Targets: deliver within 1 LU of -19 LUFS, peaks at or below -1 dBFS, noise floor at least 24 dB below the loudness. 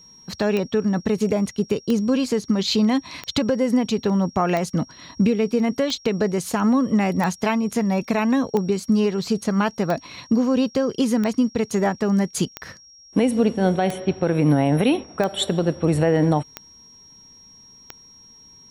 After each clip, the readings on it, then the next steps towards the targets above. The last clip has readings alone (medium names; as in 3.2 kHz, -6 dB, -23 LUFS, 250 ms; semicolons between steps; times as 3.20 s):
clicks found 14; steady tone 5.6 kHz; tone level -46 dBFS; loudness -21.5 LUFS; peak level -7.5 dBFS; loudness target -19.0 LUFS
-> de-click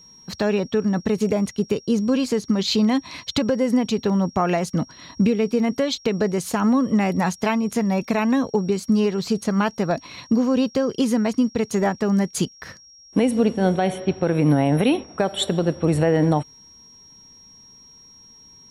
clicks found 0; steady tone 5.6 kHz; tone level -46 dBFS
-> band-stop 5.6 kHz, Q 30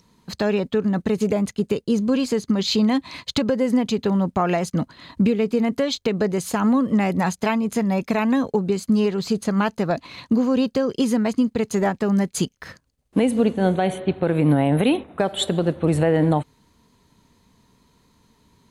steady tone not found; loudness -21.5 LUFS; peak level -8.0 dBFS; loudness target -19.0 LUFS
-> trim +2.5 dB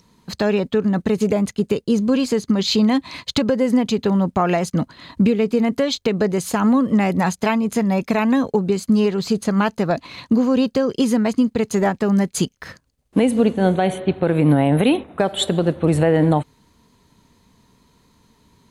loudness -19.0 LUFS; peak level -5.5 dBFS; noise floor -60 dBFS